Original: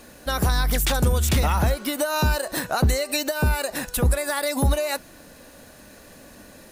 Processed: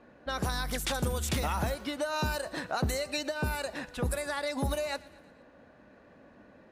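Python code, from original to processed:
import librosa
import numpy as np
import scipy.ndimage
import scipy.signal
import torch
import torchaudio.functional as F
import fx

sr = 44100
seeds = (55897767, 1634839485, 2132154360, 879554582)

p1 = fx.env_lowpass(x, sr, base_hz=1600.0, full_db=-16.0)
p2 = fx.highpass(p1, sr, hz=110.0, slope=6)
p3 = p2 + fx.echo_feedback(p2, sr, ms=116, feedback_pct=59, wet_db=-22, dry=0)
y = p3 * 10.0 ** (-7.5 / 20.0)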